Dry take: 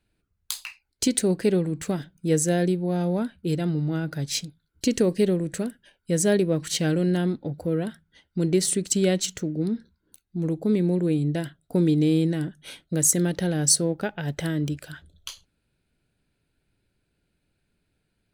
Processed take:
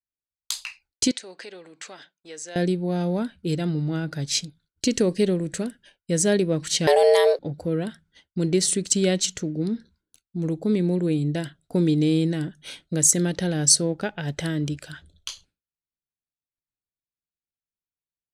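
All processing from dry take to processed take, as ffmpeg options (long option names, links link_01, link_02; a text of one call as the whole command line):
ffmpeg -i in.wav -filter_complex "[0:a]asettb=1/sr,asplit=3[link_01][link_02][link_03];[link_01]atrim=end=1.114[link_04];[link_02]atrim=start=1.11:end=2.56,asetpts=PTS-STARTPTS,afade=type=in:duration=0.004:curve=qsin,afade=type=out:start_time=1.446:duration=0.004:curve=qsin,acompressor=threshold=-30dB:ratio=2.5:attack=3.2:release=140:knee=1:detection=peak,highpass=730,lowpass=5900[link_05];[link_03]atrim=start=2.556[link_06];[link_04][link_05]acrossfade=duration=0.004:curve1=hsin:curve2=qsin[link_07];[link_07][link_06]acrossfade=duration=0.004:curve1=qsin:curve2=hsin,asettb=1/sr,asplit=3[link_08][link_09][link_10];[link_08]atrim=end=6.874[link_11];[link_09]atrim=start=6.87:end=7.39,asetpts=PTS-STARTPTS,afade=type=in:duration=0.004:curve=qsin,afade=type=out:start_time=0.516:duration=0.004:curve=qsin,afreqshift=270,aemphasis=mode=production:type=cd,acontrast=62[link_12];[link_10]atrim=start=7.386[link_13];[link_11][link_12]acrossfade=duration=0.004:curve1=hsin:curve2=qsin[link_14];[link_14][link_13]acrossfade=duration=0.004:curve1=qsin:curve2=hsin,agate=range=-33dB:threshold=-53dB:ratio=3:detection=peak,lowpass=7300,highshelf=frequency=4000:gain=8" out.wav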